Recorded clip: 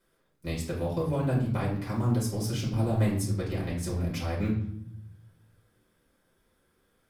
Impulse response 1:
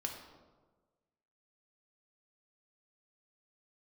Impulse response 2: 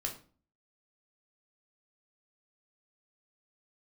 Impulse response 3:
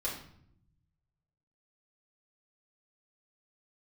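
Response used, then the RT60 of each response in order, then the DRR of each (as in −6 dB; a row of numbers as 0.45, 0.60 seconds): 3; 1.4, 0.40, 0.65 seconds; 1.5, 1.0, −6.0 decibels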